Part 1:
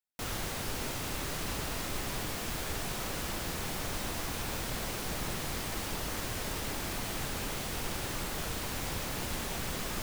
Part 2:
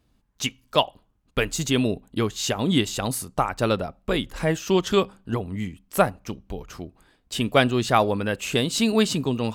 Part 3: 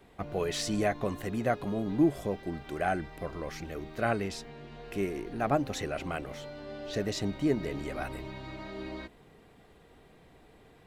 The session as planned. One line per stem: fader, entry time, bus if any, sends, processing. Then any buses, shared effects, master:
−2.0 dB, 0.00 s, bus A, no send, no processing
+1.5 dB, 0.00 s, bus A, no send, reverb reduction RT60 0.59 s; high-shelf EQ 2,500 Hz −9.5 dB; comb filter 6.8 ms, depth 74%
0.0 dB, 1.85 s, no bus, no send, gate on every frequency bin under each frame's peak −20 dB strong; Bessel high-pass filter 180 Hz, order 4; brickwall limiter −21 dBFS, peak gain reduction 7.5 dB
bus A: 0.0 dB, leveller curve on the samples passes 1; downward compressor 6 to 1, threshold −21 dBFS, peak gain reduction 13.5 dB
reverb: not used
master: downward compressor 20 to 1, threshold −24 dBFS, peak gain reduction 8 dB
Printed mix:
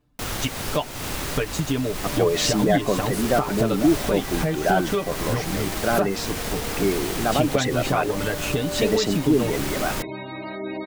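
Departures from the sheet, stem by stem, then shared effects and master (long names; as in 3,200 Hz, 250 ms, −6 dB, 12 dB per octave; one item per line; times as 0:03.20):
stem 1 −2.0 dB → +4.5 dB
stem 3 0.0 dB → +10.5 dB
master: missing downward compressor 20 to 1, threshold −24 dBFS, peak gain reduction 8 dB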